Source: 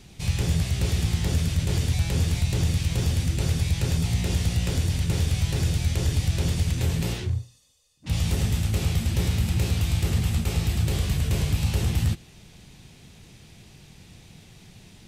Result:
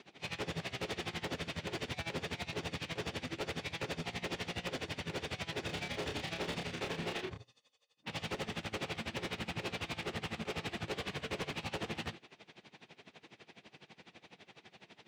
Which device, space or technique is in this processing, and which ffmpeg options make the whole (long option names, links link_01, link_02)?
helicopter radio: -filter_complex "[0:a]highpass=380,lowpass=2800,aeval=exprs='val(0)*pow(10,-21*(0.5-0.5*cos(2*PI*12*n/s))/20)':channel_layout=same,asoftclip=type=hard:threshold=-39dB,asettb=1/sr,asplit=3[link_01][link_02][link_03];[link_01]atrim=end=5.664[link_04];[link_02]atrim=start=5.66:end=7.38,asetpts=PTS-STARTPTS,afade=type=in:duration=0.004:curve=qsin,afade=type=out:start_time=1.716:duration=0.004:curve=qsin,asplit=2[link_05][link_06];[link_06]adelay=29,volume=-4.5dB[link_07];[link_05][link_07]amix=inputs=2:normalize=0,atrim=end_sample=75852[link_08];[link_03]atrim=start=7.376[link_09];[link_04][link_08]acrossfade=duration=0.004:curve1=hsin:curve2=qsin[link_10];[link_10][link_09]acrossfade=duration=0.004:curve1=qsin:curve2=hsin,volume=5.5dB"